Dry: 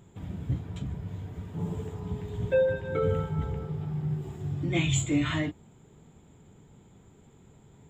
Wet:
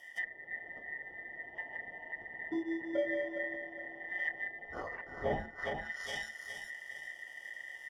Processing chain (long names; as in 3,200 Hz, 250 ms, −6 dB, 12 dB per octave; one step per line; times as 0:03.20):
Chebyshev band-stop filter 110–1,100 Hz, order 5
high shelf with overshoot 3,800 Hz +7.5 dB, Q 1.5
on a send: repeating echo 414 ms, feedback 34%, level −8 dB
on the sum: sine wavefolder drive 6 dB, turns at −11 dBFS
bad sample-rate conversion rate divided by 8×, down filtered, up hold
phaser with its sweep stopped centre 570 Hz, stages 6
ring modulation 1,900 Hz
treble cut that deepens with the level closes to 600 Hz, closed at −34.5 dBFS
automatic gain control gain up to 4 dB
level +6 dB